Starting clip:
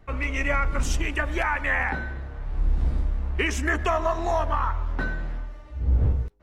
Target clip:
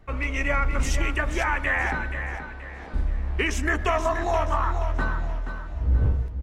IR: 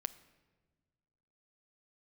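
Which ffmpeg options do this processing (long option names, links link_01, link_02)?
-filter_complex "[0:a]asettb=1/sr,asplit=3[link_01][link_02][link_03];[link_01]atrim=end=2.374[link_04];[link_02]atrim=start=2.37:end=2.94,asetpts=PTS-STARTPTS,afade=type=in:duration=0.004:curve=qsin,afade=type=out:start_time=0.566:duration=0.004:curve=qsin,highpass=420,lowpass=5000[link_05];[link_03]atrim=start=2.936[link_06];[link_04][link_05]acrossfade=duration=0.004:curve1=hsin:curve2=qsin[link_07];[link_07][link_06]acrossfade=duration=0.004:curve1=qsin:curve2=hsin,aecho=1:1:478|956|1434|1912:0.355|0.128|0.046|0.0166"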